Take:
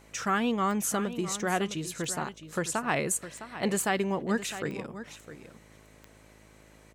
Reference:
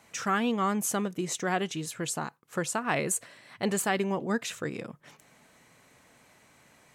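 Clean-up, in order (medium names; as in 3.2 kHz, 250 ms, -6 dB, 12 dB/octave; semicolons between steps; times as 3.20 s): de-click; de-hum 53 Hz, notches 12; inverse comb 659 ms -12.5 dB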